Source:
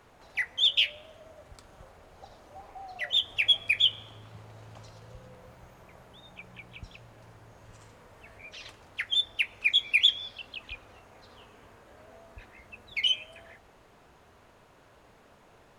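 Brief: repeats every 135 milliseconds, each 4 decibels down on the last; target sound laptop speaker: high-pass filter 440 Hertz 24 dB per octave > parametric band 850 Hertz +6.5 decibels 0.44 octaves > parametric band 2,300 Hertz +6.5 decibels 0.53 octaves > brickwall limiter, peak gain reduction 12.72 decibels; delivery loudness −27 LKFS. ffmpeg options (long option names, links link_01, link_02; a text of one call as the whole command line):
ffmpeg -i in.wav -af "highpass=frequency=440:width=0.5412,highpass=frequency=440:width=1.3066,equalizer=frequency=850:width_type=o:width=0.44:gain=6.5,equalizer=frequency=2300:width_type=o:width=0.53:gain=6.5,aecho=1:1:135|270|405|540|675|810|945|1080|1215:0.631|0.398|0.25|0.158|0.0994|0.0626|0.0394|0.0249|0.0157,alimiter=limit=-18.5dB:level=0:latency=1" out.wav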